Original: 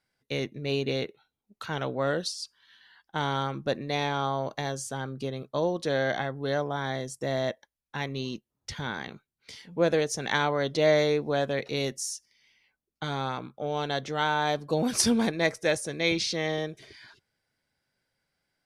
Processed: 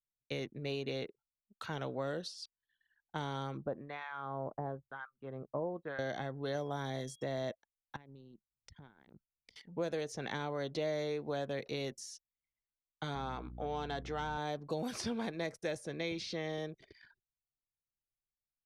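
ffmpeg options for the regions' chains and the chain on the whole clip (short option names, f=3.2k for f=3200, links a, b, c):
-filter_complex "[0:a]asettb=1/sr,asplit=3[a][b][c];[a]atrim=end=3.574[d];[b]atrim=start=3.57:end=5.99,asetpts=PTS-STARTPTS,afade=t=in:d=0.004:c=qsin,afade=t=out:st=2.416:d=0.004:c=qsin,acrossover=split=1100[e][f];[e]aeval=exprs='val(0)*(1-1/2+1/2*cos(2*PI*1*n/s))':c=same[g];[f]aeval=exprs='val(0)*(1-1/2-1/2*cos(2*PI*1*n/s))':c=same[h];[g][h]amix=inputs=2:normalize=0,lowpass=f=1.4k:t=q:w=1.7[i];[c]atrim=start=5.986[j];[d][i]acrossfade=d=0.004:c1=hsin:c2=qsin[k];[k][j]acrossfade=d=0.004:c1=qsin:c2=hsin,asettb=1/sr,asplit=3[l][m][n];[l]atrim=end=6.544[o];[m]atrim=start=6.54:end=7.24,asetpts=PTS-STARTPTS,afade=t=in:d=0.004:c=qsin,afade=t=out:st=0.696:d=0.004:c=qsin,highshelf=f=7.5k:g=10,aecho=1:1:7.2:0.41,atrim=end_sample=30870,aeval=exprs='val(0)+0.002*sin(2*PI*3300*n/s)':c=same[p];[n]atrim=start=7.236[q];[o][p]acrossfade=d=0.004:c1=hsin:c2=qsin[r];[r][q]acrossfade=d=0.004:c1=qsin:c2=hsin,asettb=1/sr,asplit=3[s][t][u];[s]atrim=end=7.964[v];[t]atrim=start=7.96:end=9.56,asetpts=PTS-STARTPTS,afade=t=in:d=0.004:c=qsin,afade=t=out:st=1.596:d=0.004:c=qsin,acompressor=threshold=-47dB:ratio=16:attack=3.2:release=140:knee=1:detection=peak,lowshelf=f=230:g=5[w];[u]atrim=start=9.556[x];[v][w]acrossfade=d=0.004:c1=hsin:c2=qsin[y];[y][x]acrossfade=d=0.004:c1=qsin:c2=hsin,asettb=1/sr,asplit=3[z][aa][ab];[z]atrim=end=13.154[ac];[aa]atrim=start=13.15:end=14.38,asetpts=PTS-STARTPTS,afade=t=in:d=0.004:c=qsin,afade=t=out:st=1.226:d=0.004:c=qsin,asplit=2[ad][ae];[ae]highpass=f=720:p=1,volume=10dB,asoftclip=type=tanh:threshold=-12.5dB[af];[ad][af]amix=inputs=2:normalize=0,lowpass=f=2k:p=1,volume=-6dB,bandreject=f=570:w=6.2,aeval=exprs='val(0)+0.00891*(sin(2*PI*60*n/s)+sin(2*PI*2*60*n/s)/2+sin(2*PI*3*60*n/s)/3+sin(2*PI*4*60*n/s)/4+sin(2*PI*5*60*n/s)/5)':c=same[ag];[ab]atrim=start=14.376[ah];[ac][ag]acrossfade=d=0.004:c1=hsin:c2=qsin[ai];[ai][ah]acrossfade=d=0.004:c1=qsin:c2=hsin,anlmdn=0.0158,acrossover=split=490|4700[aj][ak][al];[aj]acompressor=threshold=-34dB:ratio=4[am];[ak]acompressor=threshold=-37dB:ratio=4[an];[al]acompressor=threshold=-51dB:ratio=4[ao];[am][an][ao]amix=inputs=3:normalize=0,equalizer=f=760:t=o:w=1.5:g=2,volume=-5dB"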